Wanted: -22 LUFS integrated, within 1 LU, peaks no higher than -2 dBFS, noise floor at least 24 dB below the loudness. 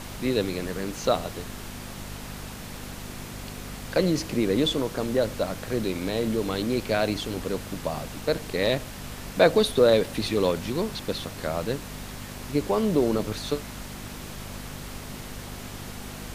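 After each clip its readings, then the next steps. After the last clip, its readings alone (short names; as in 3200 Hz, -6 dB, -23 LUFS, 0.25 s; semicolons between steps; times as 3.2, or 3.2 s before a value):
hum 50 Hz; harmonics up to 250 Hz; hum level -39 dBFS; noise floor -39 dBFS; noise floor target -51 dBFS; loudness -26.5 LUFS; peak -5.5 dBFS; loudness target -22.0 LUFS
-> de-hum 50 Hz, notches 5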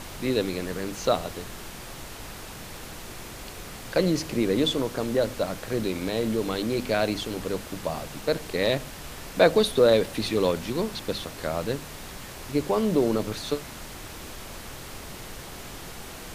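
hum none; noise floor -41 dBFS; noise floor target -51 dBFS
-> noise print and reduce 10 dB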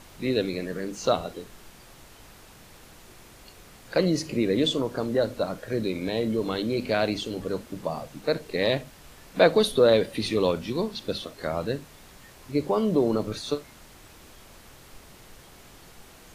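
noise floor -51 dBFS; loudness -26.5 LUFS; peak -5.0 dBFS; loudness target -22.0 LUFS
-> gain +4.5 dB; limiter -2 dBFS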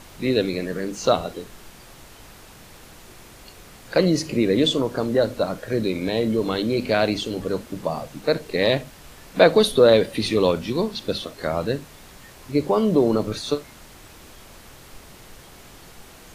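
loudness -22.0 LUFS; peak -2.0 dBFS; noise floor -46 dBFS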